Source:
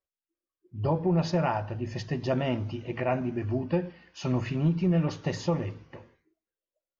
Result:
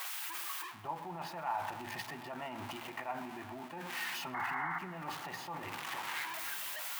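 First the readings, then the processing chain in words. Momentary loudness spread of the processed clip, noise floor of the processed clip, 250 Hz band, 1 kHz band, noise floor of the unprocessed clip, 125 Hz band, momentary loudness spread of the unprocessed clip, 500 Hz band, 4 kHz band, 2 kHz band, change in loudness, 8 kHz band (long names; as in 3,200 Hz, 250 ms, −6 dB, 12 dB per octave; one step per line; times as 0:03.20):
6 LU, −48 dBFS, −19.0 dB, −2.5 dB, below −85 dBFS, −24.0 dB, 9 LU, −17.0 dB, 0.0 dB, +2.0 dB, −10.5 dB, can't be measured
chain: spike at every zero crossing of −24.5 dBFS
three-way crossover with the lows and the highs turned down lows −17 dB, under 210 Hz, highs −18 dB, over 2,900 Hz
reversed playback
downward compressor 8 to 1, threshold −39 dBFS, peak gain reduction 16 dB
reversed playback
sound drawn into the spectrogram noise, 0:04.34–0:04.79, 690–2,200 Hz −41 dBFS
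on a send: feedback echo with a low-pass in the loop 129 ms, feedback 81%, low-pass 3,200 Hz, level −18 dB
on the sum: brickwall limiter −38.5 dBFS, peak gain reduction 11 dB
low shelf with overshoot 660 Hz −7.5 dB, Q 3
level +9 dB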